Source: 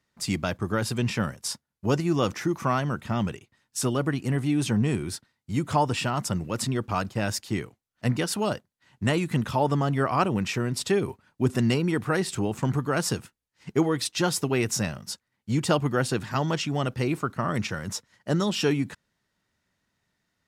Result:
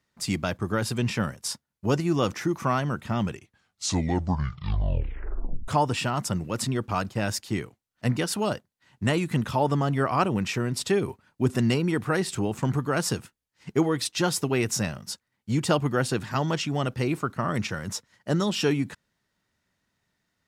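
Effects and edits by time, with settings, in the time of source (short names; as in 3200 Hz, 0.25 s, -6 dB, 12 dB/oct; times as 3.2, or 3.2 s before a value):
3.27 tape stop 2.41 s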